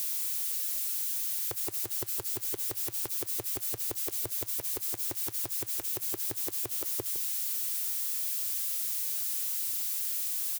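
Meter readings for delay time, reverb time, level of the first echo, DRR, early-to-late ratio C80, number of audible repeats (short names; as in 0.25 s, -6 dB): 0.159 s, none, -13.5 dB, none, none, 1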